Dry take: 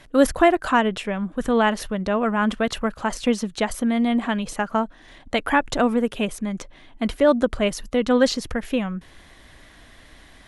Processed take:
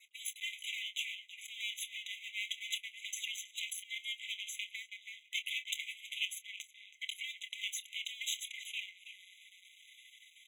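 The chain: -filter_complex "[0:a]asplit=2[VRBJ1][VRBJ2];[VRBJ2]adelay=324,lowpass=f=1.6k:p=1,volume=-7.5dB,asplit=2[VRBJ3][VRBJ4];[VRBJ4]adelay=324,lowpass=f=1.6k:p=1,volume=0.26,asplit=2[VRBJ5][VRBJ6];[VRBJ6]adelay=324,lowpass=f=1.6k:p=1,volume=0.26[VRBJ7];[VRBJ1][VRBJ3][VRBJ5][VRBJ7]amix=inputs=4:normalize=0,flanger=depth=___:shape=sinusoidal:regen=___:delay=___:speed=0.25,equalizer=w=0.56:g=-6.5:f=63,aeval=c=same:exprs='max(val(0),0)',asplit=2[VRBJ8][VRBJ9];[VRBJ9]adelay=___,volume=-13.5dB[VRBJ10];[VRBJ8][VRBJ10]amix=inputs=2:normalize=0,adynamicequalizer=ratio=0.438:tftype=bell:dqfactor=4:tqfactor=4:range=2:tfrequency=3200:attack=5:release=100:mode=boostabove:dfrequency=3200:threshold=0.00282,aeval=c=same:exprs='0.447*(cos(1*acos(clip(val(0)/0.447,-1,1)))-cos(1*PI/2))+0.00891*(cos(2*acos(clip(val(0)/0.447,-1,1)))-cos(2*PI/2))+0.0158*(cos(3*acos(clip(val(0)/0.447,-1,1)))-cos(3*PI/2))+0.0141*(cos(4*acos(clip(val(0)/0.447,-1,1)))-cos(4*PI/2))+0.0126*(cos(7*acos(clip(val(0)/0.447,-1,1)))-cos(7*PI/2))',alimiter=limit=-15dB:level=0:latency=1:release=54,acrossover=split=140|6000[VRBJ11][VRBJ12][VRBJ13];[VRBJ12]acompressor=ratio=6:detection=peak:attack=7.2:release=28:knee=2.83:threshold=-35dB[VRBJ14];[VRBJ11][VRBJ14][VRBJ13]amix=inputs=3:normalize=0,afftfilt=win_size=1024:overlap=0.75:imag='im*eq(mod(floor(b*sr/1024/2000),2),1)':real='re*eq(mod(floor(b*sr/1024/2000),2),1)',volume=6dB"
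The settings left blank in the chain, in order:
3.8, -26, 3.2, 27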